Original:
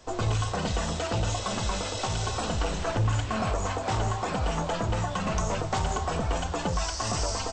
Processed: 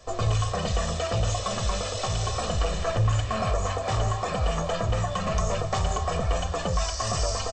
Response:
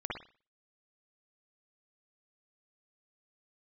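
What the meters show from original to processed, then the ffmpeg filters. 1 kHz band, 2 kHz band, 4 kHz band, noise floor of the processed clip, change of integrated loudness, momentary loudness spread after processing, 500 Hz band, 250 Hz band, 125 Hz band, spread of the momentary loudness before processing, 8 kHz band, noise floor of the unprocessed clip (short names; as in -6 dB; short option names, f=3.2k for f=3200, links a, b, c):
+1.0 dB, -0.5 dB, +1.5 dB, -32 dBFS, +2.0 dB, 2 LU, +3.0 dB, -2.0 dB, +2.5 dB, 2 LU, +1.5 dB, -34 dBFS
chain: -af "aecho=1:1:1.7:0.56"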